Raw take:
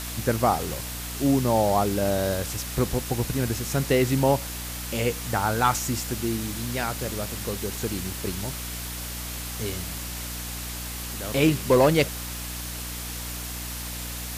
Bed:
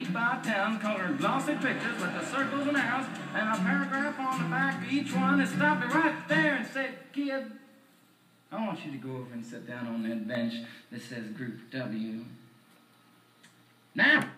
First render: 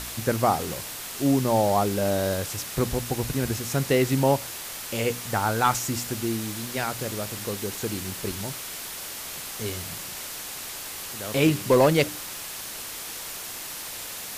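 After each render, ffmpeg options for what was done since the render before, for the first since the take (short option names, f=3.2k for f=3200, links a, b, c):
-af "bandreject=f=60:t=h:w=4,bandreject=f=120:t=h:w=4,bandreject=f=180:t=h:w=4,bandreject=f=240:t=h:w=4,bandreject=f=300:t=h:w=4"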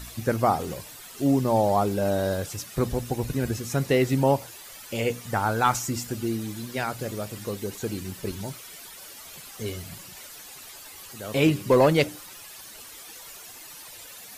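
-af "afftdn=nr=12:nf=-37"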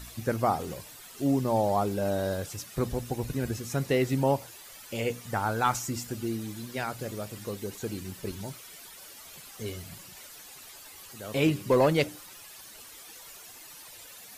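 -af "volume=-4dB"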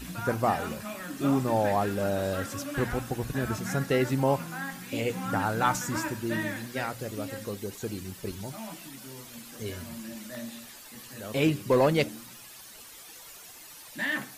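-filter_complex "[1:a]volume=-8dB[a];[0:a][a]amix=inputs=2:normalize=0"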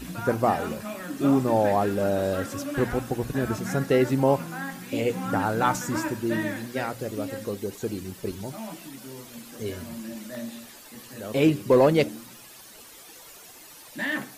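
-af "equalizer=f=380:w=0.6:g=5.5"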